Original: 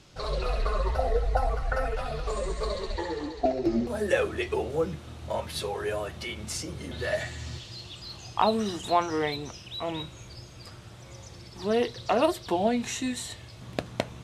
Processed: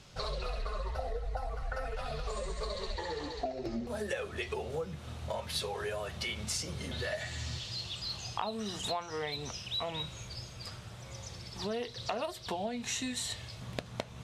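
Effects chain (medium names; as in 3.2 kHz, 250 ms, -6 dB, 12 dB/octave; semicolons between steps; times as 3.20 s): peaking EQ 320 Hz -10.5 dB 0.33 oct; compression 5:1, threshold -34 dBFS, peak gain reduction 14.5 dB; dynamic bell 4.5 kHz, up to +4 dB, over -53 dBFS, Q 0.78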